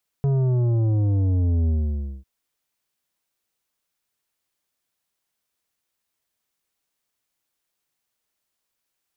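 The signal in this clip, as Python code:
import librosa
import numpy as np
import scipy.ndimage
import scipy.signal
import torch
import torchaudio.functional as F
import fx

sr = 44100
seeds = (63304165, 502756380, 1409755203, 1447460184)

y = fx.sub_drop(sr, level_db=-18.5, start_hz=140.0, length_s=2.0, drive_db=9.5, fade_s=0.56, end_hz=65.0)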